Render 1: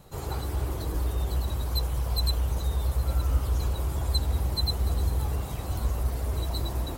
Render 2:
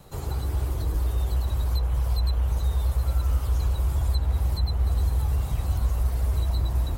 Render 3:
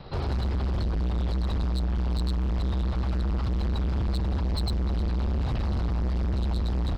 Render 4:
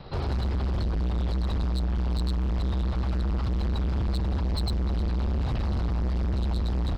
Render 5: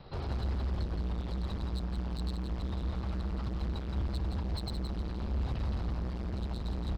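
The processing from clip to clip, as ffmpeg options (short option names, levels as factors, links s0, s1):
-filter_complex "[0:a]asubboost=boost=4.5:cutoff=150,acrossover=split=270|2900[s0][s1][s2];[s0]acompressor=threshold=0.0562:ratio=4[s3];[s1]acompressor=threshold=0.00794:ratio=4[s4];[s2]acompressor=threshold=0.00398:ratio=4[s5];[s3][s4][s5]amix=inputs=3:normalize=0,volume=1.33"
-af "aresample=11025,acrusher=bits=5:mode=log:mix=0:aa=0.000001,aresample=44100,asoftclip=type=hard:threshold=0.0282,volume=2.11"
-af anull
-af "aecho=1:1:170:0.473,volume=0.422"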